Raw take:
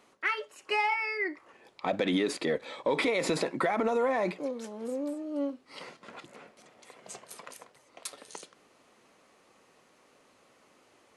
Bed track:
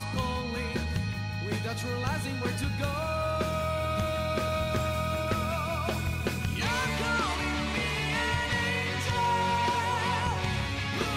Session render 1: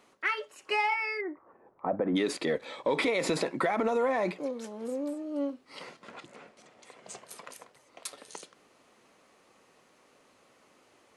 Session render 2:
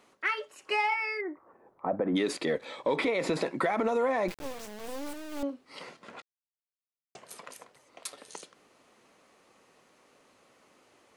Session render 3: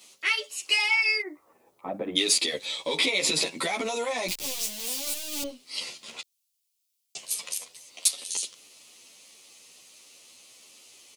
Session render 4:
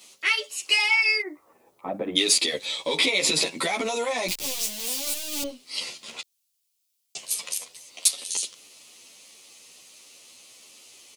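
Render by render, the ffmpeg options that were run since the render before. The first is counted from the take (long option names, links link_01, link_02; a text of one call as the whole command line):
ffmpeg -i in.wav -filter_complex "[0:a]asplit=3[link_01][link_02][link_03];[link_01]afade=type=out:start_time=1.2:duration=0.02[link_04];[link_02]lowpass=frequency=1300:width=0.5412,lowpass=frequency=1300:width=1.3066,afade=type=in:start_time=1.2:duration=0.02,afade=type=out:start_time=2.15:duration=0.02[link_05];[link_03]afade=type=in:start_time=2.15:duration=0.02[link_06];[link_04][link_05][link_06]amix=inputs=3:normalize=0,asettb=1/sr,asplit=3[link_07][link_08][link_09];[link_07]atrim=end=6.124[link_10];[link_08]atrim=start=6.12:end=7.17,asetpts=PTS-STARTPTS,afade=type=in:duration=0.004:curve=qsin,afade=type=out:start_time=1.046:duration=0.004:curve=qsin,lowpass=frequency=10000:width=0.5412,lowpass=frequency=10000:width=1.3066[link_11];[link_09]atrim=start=7.166[link_12];[link_10][link_11]acrossfade=duration=0.004:curve1=hsin:curve2=qsin[link_13];[link_13][link_12]acrossfade=duration=0.004:curve1=qsin:curve2=hsin" out.wav
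ffmpeg -i in.wav -filter_complex "[0:a]asettb=1/sr,asplit=3[link_01][link_02][link_03];[link_01]atrim=end=2.964[link_04];[link_02]atrim=start=2.96:end=3.42,asetpts=PTS-STARTPTS,afade=type=in:duration=0.004:curve=qsin,afade=type=out:start_time=0.456:duration=0.004:curve=qsin,equalizer=frequency=9900:width=0.36:gain=-7[link_05];[link_03]atrim=start=3.416[link_06];[link_04][link_05]acrossfade=duration=0.004:curve1=hsin:curve2=qsin[link_07];[link_07][link_06]acrossfade=duration=0.004:curve1=qsin:curve2=hsin,asettb=1/sr,asplit=3[link_08][link_09][link_10];[link_08]atrim=end=4.284[link_11];[link_09]atrim=start=4.28:end=5.43,asetpts=PTS-STARTPTS,afade=type=in:duration=0.004:curve=qsin,afade=type=out:start_time=1.146:duration=0.004:curve=qsin,acrusher=bits=4:dc=4:mix=0:aa=0.000001[link_12];[link_10]atrim=start=5.426[link_13];[link_11][link_12]acrossfade=duration=0.004:curve1=hsin:curve2=qsin[link_14];[link_14][link_13]acrossfade=duration=0.004:curve1=qsin:curve2=hsin,asplit=3[link_15][link_16][link_17];[link_15]atrim=end=6.22,asetpts=PTS-STARTPTS,afade=type=out:start_time=6.216:duration=0.004:curve=hsin[link_18];[link_16]atrim=start=6.22:end=7.15,asetpts=PTS-STARTPTS,volume=0[link_19];[link_17]atrim=start=7.15,asetpts=PTS-STARTPTS,afade=type=in:duration=0.004:curve=hsin[link_20];[link_18][link_19][link_20]concat=n=3:v=0:a=1" out.wav
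ffmpeg -i in.wav -filter_complex "[0:a]aexciter=amount=5.3:drive=8.7:freq=2400,asplit=2[link_01][link_02];[link_02]adelay=11,afreqshift=1.5[link_03];[link_01][link_03]amix=inputs=2:normalize=1" out.wav
ffmpeg -i in.wav -af "volume=2.5dB" out.wav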